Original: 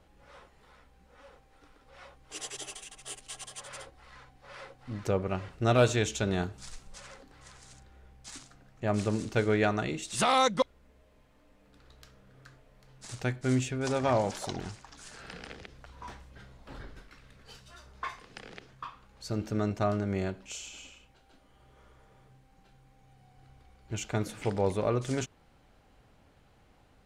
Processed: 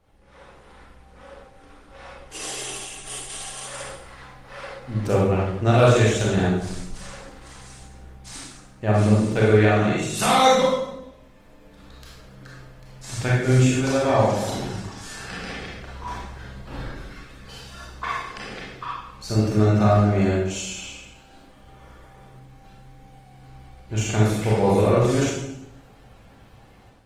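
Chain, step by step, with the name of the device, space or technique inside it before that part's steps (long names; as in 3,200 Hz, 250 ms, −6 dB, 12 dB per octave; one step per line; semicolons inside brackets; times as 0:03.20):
speakerphone in a meeting room (convolution reverb RT60 0.85 s, pre-delay 28 ms, DRR −5.5 dB; automatic gain control gain up to 8 dB; level −2.5 dB; Opus 24 kbit/s 48,000 Hz)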